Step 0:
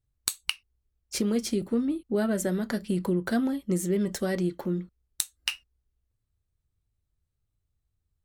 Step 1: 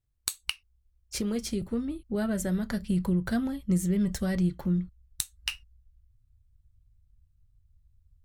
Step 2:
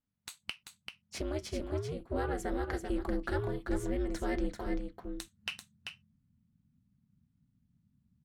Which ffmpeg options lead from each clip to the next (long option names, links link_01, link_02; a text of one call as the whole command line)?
ffmpeg -i in.wav -af "asubboost=boost=11.5:cutoff=110,volume=-2.5dB" out.wav
ffmpeg -i in.wav -filter_complex "[0:a]asplit=2[link_01][link_02];[link_02]highpass=frequency=720:poles=1,volume=13dB,asoftclip=type=tanh:threshold=-11.5dB[link_03];[link_01][link_03]amix=inputs=2:normalize=0,lowpass=frequency=1600:poles=1,volume=-6dB,aeval=exprs='val(0)*sin(2*PI*150*n/s)':channel_layout=same,aecho=1:1:389:0.501,volume=-3dB" out.wav